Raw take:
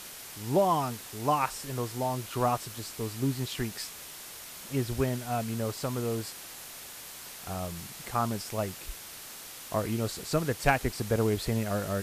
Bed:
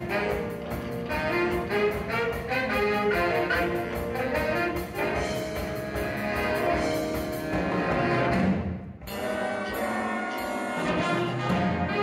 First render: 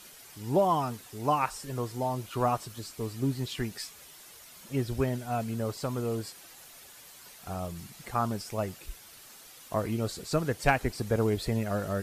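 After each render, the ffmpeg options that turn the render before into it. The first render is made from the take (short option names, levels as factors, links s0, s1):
-af "afftdn=nr=9:nf=-45"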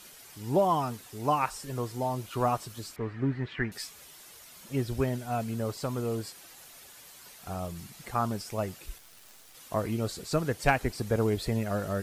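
-filter_complex "[0:a]asettb=1/sr,asplit=3[s0][s1][s2];[s0]atrim=end=2.964[s3];[s1]atrim=start=2.96:end=3.72,asetpts=PTS-STARTPTS,afade=t=in:d=0.004:c=qsin,afade=t=out:st=0.756:d=0.004:c=qsin,lowpass=f=1800:t=q:w=3.2[s4];[s2]atrim=start=3.716[s5];[s3][s4]acrossfade=d=0.004:c1=hsin:c2=qsin[s6];[s6][s5]acrossfade=d=0.004:c1=qsin:c2=hsin,asettb=1/sr,asplit=3[s7][s8][s9];[s7]atrim=end=8.984[s10];[s8]atrim=start=8.98:end=9.55,asetpts=PTS-STARTPTS,afade=t=in:d=0.004:c=qsin,afade=t=out:st=0.566:d=0.004:c=qsin,acrusher=bits=8:dc=4:mix=0:aa=0.000001[s11];[s9]atrim=start=9.546[s12];[s10][s11]acrossfade=d=0.004:c1=hsin:c2=qsin[s13];[s13][s12]acrossfade=d=0.004:c1=qsin:c2=hsin"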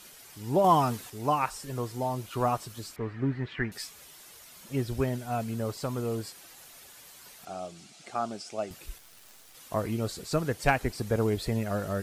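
-filter_complex "[0:a]asettb=1/sr,asplit=3[s0][s1][s2];[s0]atrim=end=0.644[s3];[s1]atrim=start=0.64:end=1.1,asetpts=PTS-STARTPTS,afade=t=in:d=0.004:c=qsin,afade=t=out:st=0.456:d=0.004:c=qsin,acontrast=30[s4];[s2]atrim=start=1.096[s5];[s3][s4]acrossfade=d=0.004:c1=hsin:c2=qsin[s6];[s6][s5]acrossfade=d=0.004:c1=qsin:c2=hsin,asettb=1/sr,asplit=3[s7][s8][s9];[s7]atrim=end=7.454[s10];[s8]atrim=start=7.45:end=8.71,asetpts=PTS-STARTPTS,afade=t=in:d=0.004:c=qsin,afade=t=out:st=1.256:d=0.004:c=qsin,highpass=280,equalizer=f=480:t=q:w=4:g=-5,equalizer=f=690:t=q:w=4:g=4,equalizer=f=1000:t=q:w=4:g=-10,equalizer=f=1800:t=q:w=4:g=-7,lowpass=f=8300:w=0.5412,lowpass=f=8300:w=1.3066[s11];[s9]atrim=start=8.706[s12];[s10][s11]acrossfade=d=0.004:c1=hsin:c2=qsin[s13];[s13][s12]acrossfade=d=0.004:c1=qsin:c2=hsin"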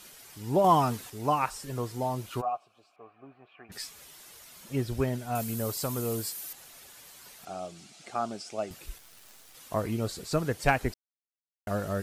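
-filter_complex "[0:a]asplit=3[s0][s1][s2];[s0]afade=t=out:st=2.4:d=0.02[s3];[s1]asplit=3[s4][s5][s6];[s4]bandpass=f=730:t=q:w=8,volume=1[s7];[s5]bandpass=f=1090:t=q:w=8,volume=0.501[s8];[s6]bandpass=f=2440:t=q:w=8,volume=0.355[s9];[s7][s8][s9]amix=inputs=3:normalize=0,afade=t=in:st=2.4:d=0.02,afade=t=out:st=3.69:d=0.02[s10];[s2]afade=t=in:st=3.69:d=0.02[s11];[s3][s10][s11]amix=inputs=3:normalize=0,asettb=1/sr,asplit=3[s12][s13][s14];[s12]atrim=end=5.354[s15];[s13]atrim=start=5.35:end=6.53,asetpts=PTS-STARTPTS,afade=t=in:d=0.004:c=qsin,afade=t=out:st=1.176:d=0.004:c=qsin,aemphasis=mode=production:type=50fm[s16];[s14]atrim=start=6.526[s17];[s15][s16]acrossfade=d=0.004:c1=hsin:c2=qsin[s18];[s18][s17]acrossfade=d=0.004:c1=qsin:c2=hsin,asplit=3[s19][s20][s21];[s19]atrim=end=10.94,asetpts=PTS-STARTPTS,afade=t=out:st=10.936:d=0.004:c=hsin[s22];[s20]atrim=start=10.94:end=11.67,asetpts=PTS-STARTPTS,volume=0[s23];[s21]atrim=start=11.67,asetpts=PTS-STARTPTS,afade=t=in:d=0.004:c=hsin[s24];[s22][s23][s24]concat=n=3:v=0:a=1"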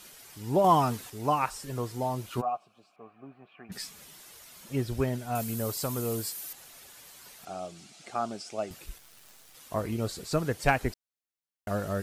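-filter_complex "[0:a]asettb=1/sr,asplit=3[s0][s1][s2];[s0]atrim=end=2.384[s3];[s1]atrim=start=2.38:end=4.2,asetpts=PTS-STARTPTS,afade=t=in:d=0.004:c=qsin,afade=t=out:st=1.816:d=0.004:c=qsin,equalizer=f=190:t=o:w=0.77:g=10.5[s4];[s2]atrim=start=4.196[s5];[s3][s4]acrossfade=d=0.004:c1=hsin:c2=qsin[s6];[s6][s5]acrossfade=d=0.004:c1=qsin:c2=hsin,asettb=1/sr,asplit=3[s7][s8][s9];[s7]atrim=end=8.844[s10];[s8]atrim=start=8.84:end=9.99,asetpts=PTS-STARTPTS,afade=t=in:d=0.004:c=qsin,afade=t=out:st=1.146:d=0.004:c=qsin,tremolo=f=150:d=0.261[s11];[s9]atrim=start=9.986[s12];[s10][s11]acrossfade=d=0.004:c1=hsin:c2=qsin[s13];[s13][s12]acrossfade=d=0.004:c1=qsin:c2=hsin"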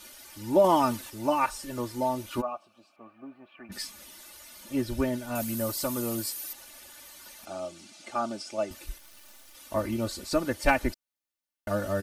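-af "bandreject=f=7500:w=18,aecho=1:1:3.4:0.81"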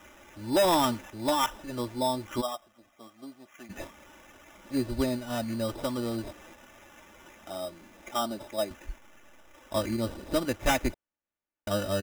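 -af "aresample=11025,asoftclip=type=hard:threshold=0.112,aresample=44100,acrusher=samples=10:mix=1:aa=0.000001"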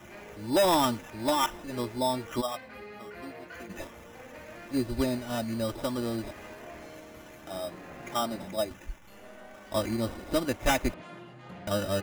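-filter_complex "[1:a]volume=0.1[s0];[0:a][s0]amix=inputs=2:normalize=0"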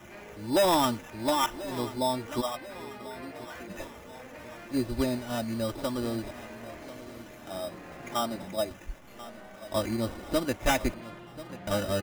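-af "aecho=1:1:1038|2076|3114|4152:0.158|0.0745|0.035|0.0165"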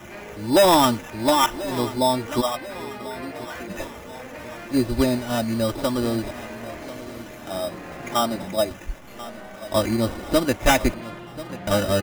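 -af "volume=2.51"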